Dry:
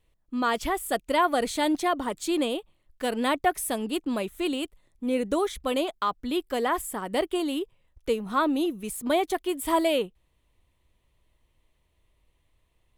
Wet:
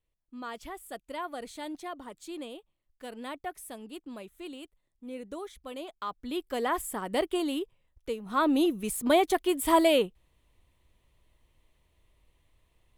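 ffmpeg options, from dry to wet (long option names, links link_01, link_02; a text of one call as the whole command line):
ffmpeg -i in.wav -af "volume=8.5dB,afade=type=in:start_time=5.77:duration=1.1:silence=0.251189,afade=type=out:start_time=7.48:duration=0.73:silence=0.446684,afade=type=in:start_time=8.21:duration=0.35:silence=0.298538" out.wav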